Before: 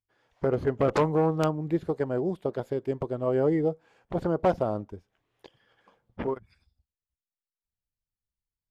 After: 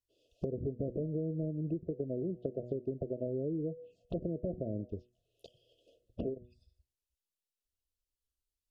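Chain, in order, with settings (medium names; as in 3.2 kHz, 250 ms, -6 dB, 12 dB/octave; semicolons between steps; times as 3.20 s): de-hum 122.1 Hz, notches 21; low-pass that closes with the level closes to 390 Hz, closed at -24 dBFS; compression 16:1, threshold -33 dBFS, peak gain reduction 12 dB; brick-wall FIR band-stop 710–2500 Hz; touch-sensitive phaser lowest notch 160 Hz, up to 3.7 kHz, full sweep at -36.5 dBFS; trim +1.5 dB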